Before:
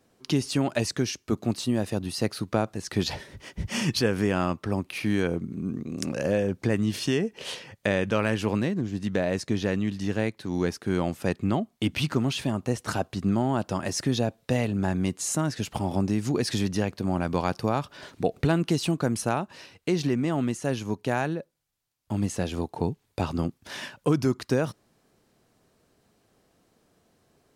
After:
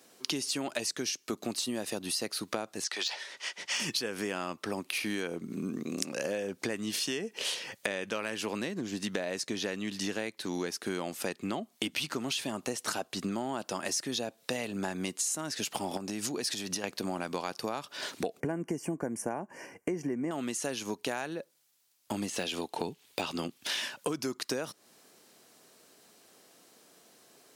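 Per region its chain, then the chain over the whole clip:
2.84–3.8 BPF 770–6600 Hz + de-esser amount 70%
15.97–16.84 notch 2100 Hz, Q 25 + compressor 5:1, threshold -29 dBFS
18.4–20.31 Butterworth band-stop 3800 Hz, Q 1 + tilt -2.5 dB/oct + notch comb 1300 Hz
22.29–23.82 de-esser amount 95% + bell 3000 Hz +7 dB 0.98 oct
whole clip: HPF 260 Hz 12 dB/oct; high shelf 2500 Hz +10 dB; compressor 6:1, threshold -35 dBFS; gain +4 dB

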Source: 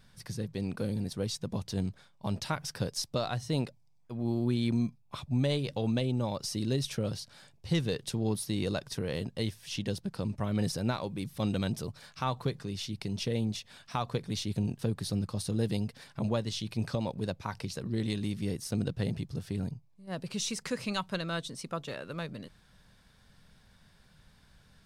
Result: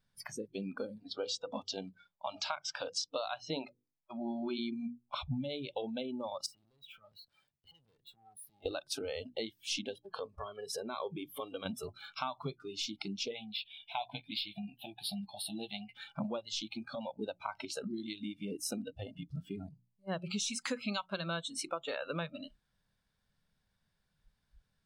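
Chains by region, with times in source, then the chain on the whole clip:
0.98–4.59 LPF 5900 Hz + low shelf 260 Hz -8.5 dB + notches 50/100/150/200/250/300/350/400/450/500 Hz
6.46–8.66 compressor 16:1, threshold -41 dBFS + bell 6100 Hz -8.5 dB 0.42 oct + tube stage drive 51 dB, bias 0.7
9.95–11.66 compressor, threshold -39 dBFS + small resonant body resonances 440/1100/1700/3200 Hz, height 10 dB, ringing for 40 ms
13.31–15.95 resonant low shelf 620 Hz -6 dB, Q 3 + fixed phaser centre 2900 Hz, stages 4 + doubler 15 ms -10.5 dB
whole clip: notches 60/120/180/240/300/360 Hz; compressor 16:1, threshold -38 dBFS; spectral noise reduction 25 dB; gain +6.5 dB

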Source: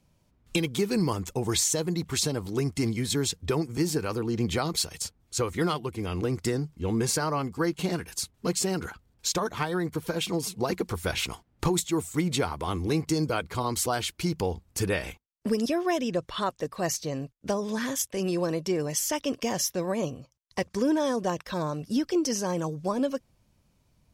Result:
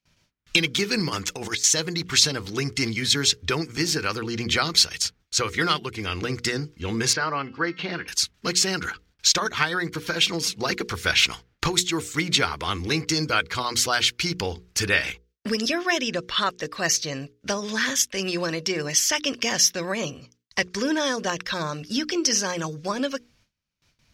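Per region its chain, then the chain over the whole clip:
1.08–1.64 low shelf 210 Hz -8 dB + negative-ratio compressor -32 dBFS, ratio -0.5
7.13–8.08 HPF 200 Hz 6 dB/oct + air absorption 280 m + de-hum 263.9 Hz, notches 26
whole clip: notches 60/120/180/240/300/360/420/480 Hz; gate with hold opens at -56 dBFS; band shelf 2900 Hz +12 dB 2.6 oct

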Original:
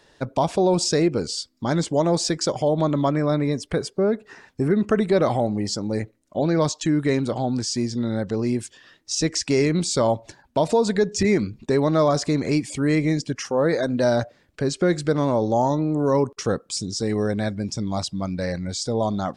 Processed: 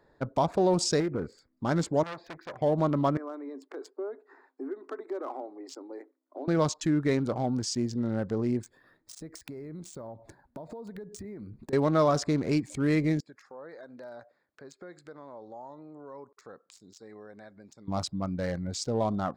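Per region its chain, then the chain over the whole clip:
1–1.53 resonant high shelf 2800 Hz -8.5 dB, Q 3 + compressor 4:1, threshold -21 dBFS + Doppler distortion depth 0.2 ms
2.03–2.62 LPF 2700 Hz 24 dB/oct + tilt shelf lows -8 dB, about 1400 Hz + core saturation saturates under 3200 Hz
3.17–6.48 compressor 3:1, threshold -25 dBFS + rippled Chebyshev high-pass 260 Hz, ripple 6 dB
8.63–11.73 compressor 16:1, threshold -32 dBFS + careless resampling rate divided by 3×, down none, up hold + mismatched tape noise reduction encoder only
13.2–17.88 HPF 1300 Hz 6 dB/oct + compressor 2:1, threshold -43 dBFS
whole clip: Wiener smoothing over 15 samples; dynamic EQ 1300 Hz, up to +4 dB, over -41 dBFS, Q 2.2; gain -5 dB

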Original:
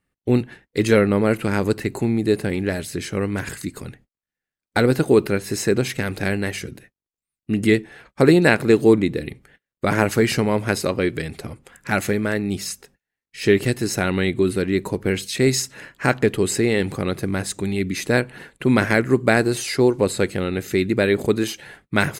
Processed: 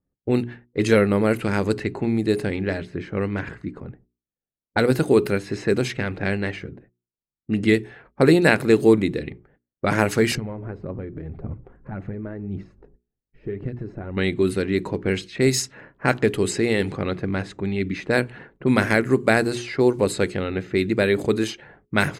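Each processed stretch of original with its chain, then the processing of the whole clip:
10.35–14.17 compressor 3:1, threshold -35 dBFS + phaser 1.8 Hz, delay 3.5 ms, feedback 35% + tilt -2.5 dB/oct
whole clip: notches 60/120/180/240/300/360/420 Hz; low-pass opened by the level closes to 580 Hz, open at -15 dBFS; gain -1 dB

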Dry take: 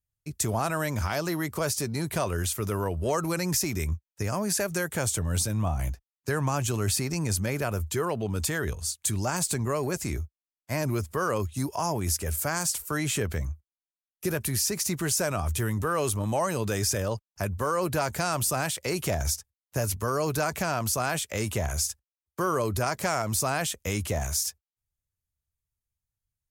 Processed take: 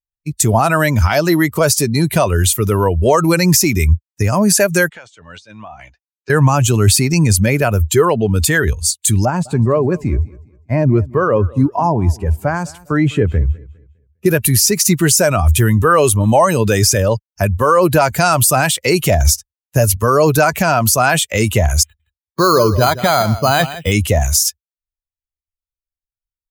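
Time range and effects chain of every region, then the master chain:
4.89–6.3 HPF 1100 Hz 6 dB/oct + compressor 20:1, threshold -35 dBFS + air absorption 150 m
9.25–14.26 LPF 1100 Hz 6 dB/oct + feedback echo 0.203 s, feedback 45%, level -15 dB
21.83–23.92 echo 0.167 s -10 dB + careless resampling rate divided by 8×, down filtered, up hold
whole clip: per-bin expansion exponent 1.5; maximiser +20 dB; gain -1 dB

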